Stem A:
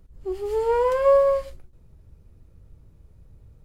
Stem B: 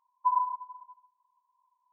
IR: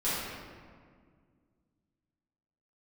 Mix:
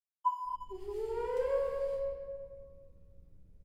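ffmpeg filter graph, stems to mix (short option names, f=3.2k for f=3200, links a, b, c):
-filter_complex "[0:a]equalizer=f=1.1k:w=3:g=-9.5,aeval=exprs='val(0)+0.00112*(sin(2*PI*60*n/s)+sin(2*PI*2*60*n/s)/2+sin(2*PI*3*60*n/s)/3+sin(2*PI*4*60*n/s)/4+sin(2*PI*5*60*n/s)/5)':c=same,adelay=450,volume=-19.5dB,asplit=2[a][b];[b]volume=-3dB[c];[1:a]aeval=exprs='sgn(val(0))*max(abs(val(0))-0.00112,0)':c=same,asplit=2[d][e];[e]adelay=2.1,afreqshift=-2.4[f];[d][f]amix=inputs=2:normalize=1,volume=-1dB[g];[2:a]atrim=start_sample=2205[h];[c][h]afir=irnorm=-1:irlink=0[i];[a][g][i]amix=inputs=3:normalize=0"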